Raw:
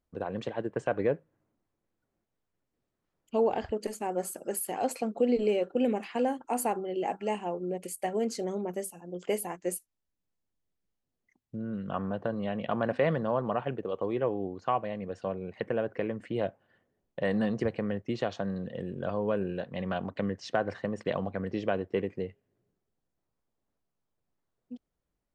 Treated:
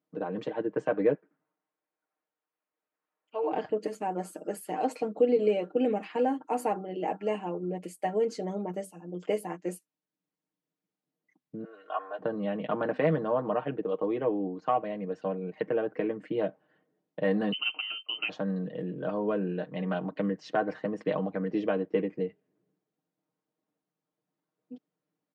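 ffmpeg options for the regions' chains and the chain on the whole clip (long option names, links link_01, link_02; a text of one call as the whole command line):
ffmpeg -i in.wav -filter_complex "[0:a]asettb=1/sr,asplit=3[link_01][link_02][link_03];[link_01]atrim=end=1.144[link_04];[link_02]atrim=start=1.14:end=3.52,asetpts=PTS-STARTPTS,afade=type=in:duration=0.004:curve=qsin,afade=type=out:start_time=2.376:duration=0.004:curve=qsin,highpass=790,lowpass=3000,asplit=5[link_05][link_06][link_07][link_08][link_09];[link_06]adelay=84,afreqshift=-130,volume=-6.5dB[link_10];[link_07]adelay=168,afreqshift=-260,volume=-15.9dB[link_11];[link_08]adelay=252,afreqshift=-390,volume=-25.2dB[link_12];[link_09]adelay=336,afreqshift=-520,volume=-34.6dB[link_13];[link_05][link_10][link_11][link_12][link_13]amix=inputs=5:normalize=0,atrim=end_sample=104958[link_14];[link_03]atrim=start=3.516[link_15];[link_04][link_14]acrossfade=duration=0.004:curve1=hsin:curve2=qsin[link_16];[link_16][link_15]acrossfade=duration=0.004:curve1=qsin:curve2=hsin,asettb=1/sr,asplit=3[link_17][link_18][link_19];[link_17]atrim=end=11.644[link_20];[link_18]atrim=start=11.64:end=12.19,asetpts=PTS-STARTPTS,afade=type=in:duration=0.004:curve=qsin,afade=type=out:start_time=0.546:duration=0.004:curve=qsin,highpass=frequency=570:width=0.5412,highpass=frequency=570:width=1.3066,aecho=1:1:2.8:0.66,atrim=end_sample=24255[link_21];[link_19]atrim=start=12.186[link_22];[link_20][link_21]acrossfade=duration=0.004:curve1=hsin:curve2=qsin[link_23];[link_23][link_22]acrossfade=duration=0.004:curve1=qsin:curve2=hsin,asettb=1/sr,asplit=3[link_24][link_25][link_26];[link_24]atrim=end=17.524[link_27];[link_25]atrim=start=17.52:end=18.29,asetpts=PTS-STARTPTS,afade=type=in:duration=0.004:curve=qsin,afade=type=out:start_time=0.766:duration=0.004:curve=qsin,equalizer=frequency=1500:width=6.1:gain=-13,lowpass=frequency=2700:width_type=q:width=0.5098,lowpass=frequency=2700:width_type=q:width=0.6013,lowpass=frequency=2700:width_type=q:width=0.9,lowpass=frequency=2700:width_type=q:width=2.563,afreqshift=-3200[link_28];[link_26]atrim=start=18.286[link_29];[link_27][link_28]acrossfade=duration=0.004:curve1=hsin:curve2=qsin[link_30];[link_30][link_29]acrossfade=duration=0.004:curve1=qsin:curve2=hsin,highpass=frequency=200:width=0.5412,highpass=frequency=200:width=1.3066,aemphasis=mode=reproduction:type=bsi,aecho=1:1:6.5:0.74,volume=-1.5dB" out.wav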